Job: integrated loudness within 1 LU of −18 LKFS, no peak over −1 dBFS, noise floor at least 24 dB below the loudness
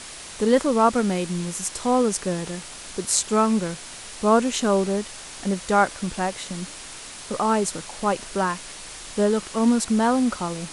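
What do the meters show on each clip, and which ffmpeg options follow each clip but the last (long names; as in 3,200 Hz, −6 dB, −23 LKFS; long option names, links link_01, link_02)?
background noise floor −39 dBFS; target noise floor −47 dBFS; integrated loudness −23.0 LKFS; sample peak −3.0 dBFS; target loudness −18.0 LKFS
→ -af "afftdn=noise_reduction=8:noise_floor=-39"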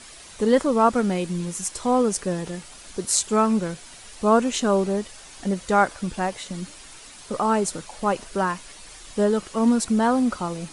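background noise floor −44 dBFS; target noise floor −47 dBFS
→ -af "afftdn=noise_reduction=6:noise_floor=-44"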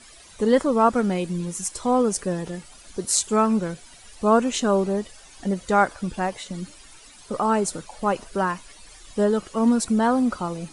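background noise floor −48 dBFS; integrated loudness −23.0 LKFS; sample peak −3.5 dBFS; target loudness −18.0 LKFS
→ -af "volume=5dB,alimiter=limit=-1dB:level=0:latency=1"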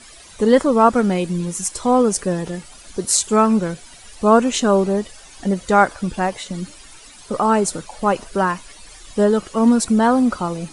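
integrated loudness −18.0 LKFS; sample peak −1.0 dBFS; background noise floor −43 dBFS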